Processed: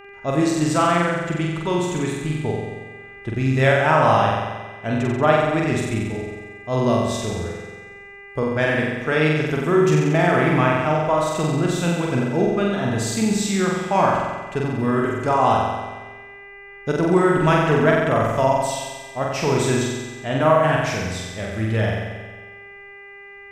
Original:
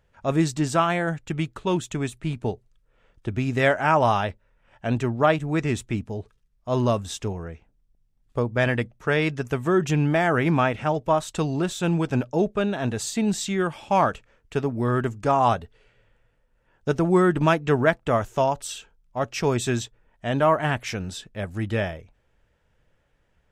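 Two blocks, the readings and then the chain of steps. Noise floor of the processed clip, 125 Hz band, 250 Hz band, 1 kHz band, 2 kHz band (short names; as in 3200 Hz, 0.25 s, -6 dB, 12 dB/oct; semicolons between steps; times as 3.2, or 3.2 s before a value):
-41 dBFS, +4.0 dB, +4.0 dB, +4.0 dB, +4.5 dB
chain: buzz 400 Hz, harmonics 7, -44 dBFS -3 dB/oct; flutter echo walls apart 7.8 m, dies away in 1.3 s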